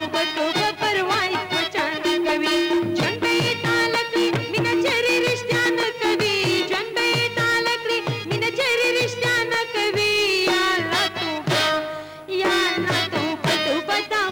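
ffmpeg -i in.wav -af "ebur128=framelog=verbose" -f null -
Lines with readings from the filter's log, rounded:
Integrated loudness:
  I:         -20.4 LUFS
  Threshold: -30.5 LUFS
Loudness range:
  LRA:         1.4 LU
  Threshold: -40.3 LUFS
  LRA low:   -21.1 LUFS
  LRA high:  -19.7 LUFS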